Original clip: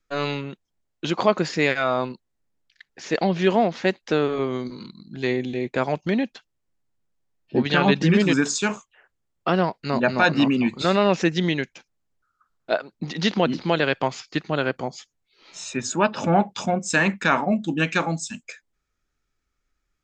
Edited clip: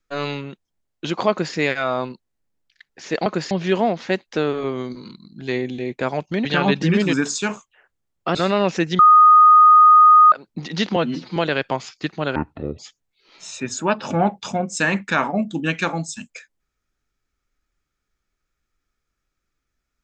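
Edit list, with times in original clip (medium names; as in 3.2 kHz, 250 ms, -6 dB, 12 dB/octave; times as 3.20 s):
1.30–1.55 s: copy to 3.26 s
6.20–7.65 s: delete
9.55–10.80 s: delete
11.44–12.77 s: bleep 1.24 kHz -6.5 dBFS
13.41–13.68 s: stretch 1.5×
14.67–14.92 s: speed 58%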